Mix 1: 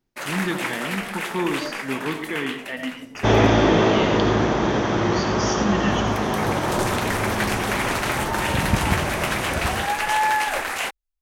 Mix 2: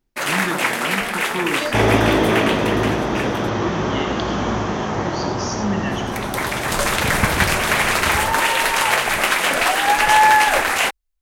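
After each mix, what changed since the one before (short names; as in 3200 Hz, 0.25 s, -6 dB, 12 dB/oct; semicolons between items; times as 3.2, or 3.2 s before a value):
first sound +8.0 dB; second sound: entry -1.50 s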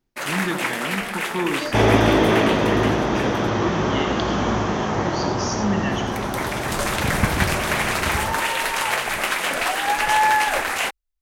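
first sound -5.0 dB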